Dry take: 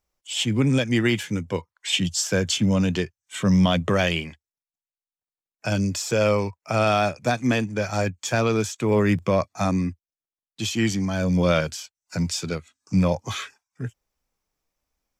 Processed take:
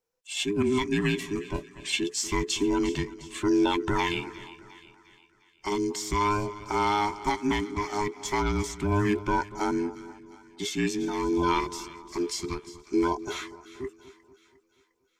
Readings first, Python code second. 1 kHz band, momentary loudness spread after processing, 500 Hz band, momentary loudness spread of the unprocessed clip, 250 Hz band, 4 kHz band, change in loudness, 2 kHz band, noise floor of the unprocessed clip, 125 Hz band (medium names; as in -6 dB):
+1.0 dB, 13 LU, -5.0 dB, 11 LU, -4.5 dB, -5.5 dB, -5.0 dB, -4.5 dB, under -85 dBFS, -11.0 dB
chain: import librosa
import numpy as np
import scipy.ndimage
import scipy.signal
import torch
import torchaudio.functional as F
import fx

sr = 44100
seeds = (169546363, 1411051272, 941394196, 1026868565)

p1 = fx.band_invert(x, sr, width_hz=500)
p2 = p1 + fx.echo_split(p1, sr, split_hz=1300.0, low_ms=239, high_ms=354, feedback_pct=52, wet_db=-16.0, dry=0)
y = F.gain(torch.from_numpy(p2), -5.0).numpy()